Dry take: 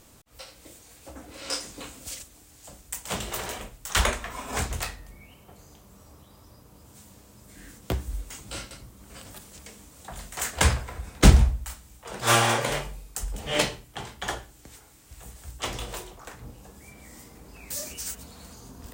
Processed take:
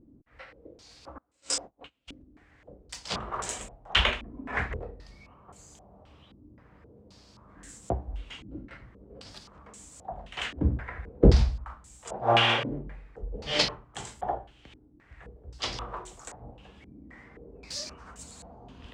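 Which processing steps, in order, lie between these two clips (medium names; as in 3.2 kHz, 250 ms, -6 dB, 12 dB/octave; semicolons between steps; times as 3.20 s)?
1.18–2.13 s: gate -37 dBFS, range -29 dB; step-sequenced low-pass 3.8 Hz 290–7600 Hz; trim -4 dB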